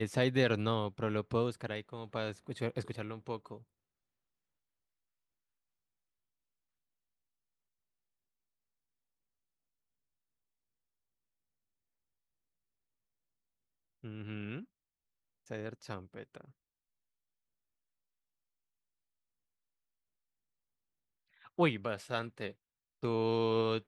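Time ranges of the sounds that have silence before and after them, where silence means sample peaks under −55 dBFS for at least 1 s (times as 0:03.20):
0:14.03–0:16.51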